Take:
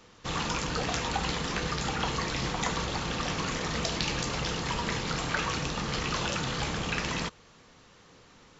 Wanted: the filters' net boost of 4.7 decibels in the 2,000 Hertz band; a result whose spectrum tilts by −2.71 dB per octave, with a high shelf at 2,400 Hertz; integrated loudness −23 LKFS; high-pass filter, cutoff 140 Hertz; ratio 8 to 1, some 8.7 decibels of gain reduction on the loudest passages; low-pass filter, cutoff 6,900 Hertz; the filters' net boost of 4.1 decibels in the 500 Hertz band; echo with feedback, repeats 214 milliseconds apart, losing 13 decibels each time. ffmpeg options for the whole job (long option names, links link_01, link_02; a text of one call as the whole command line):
ffmpeg -i in.wav -af "highpass=140,lowpass=6900,equalizer=frequency=500:width_type=o:gain=4.5,equalizer=frequency=2000:width_type=o:gain=3.5,highshelf=frequency=2400:gain=4.5,acompressor=threshold=-32dB:ratio=8,aecho=1:1:214|428|642:0.224|0.0493|0.0108,volume=11.5dB" out.wav